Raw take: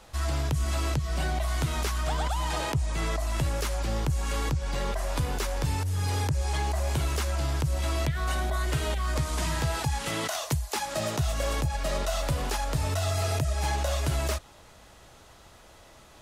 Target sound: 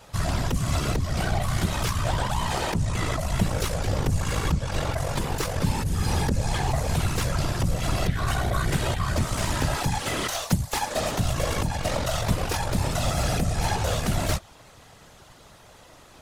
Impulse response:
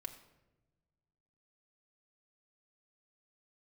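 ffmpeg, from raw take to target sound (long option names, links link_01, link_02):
-af "aeval=exprs='0.119*(cos(1*acos(clip(val(0)/0.119,-1,1)))-cos(1*PI/2))+0.0188*(cos(4*acos(clip(val(0)/0.119,-1,1)))-cos(4*PI/2))':channel_layout=same,afftfilt=real='hypot(re,im)*cos(2*PI*random(0))':imag='hypot(re,im)*sin(2*PI*random(1))':win_size=512:overlap=0.75,volume=8.5dB"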